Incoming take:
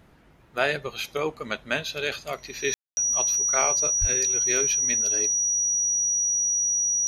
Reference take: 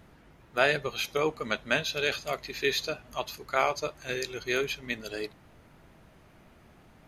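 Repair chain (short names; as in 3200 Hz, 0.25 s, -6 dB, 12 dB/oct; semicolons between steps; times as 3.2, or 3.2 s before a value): notch 5800 Hz, Q 30; 4–4.12 HPF 140 Hz 24 dB/oct; room tone fill 2.74–2.97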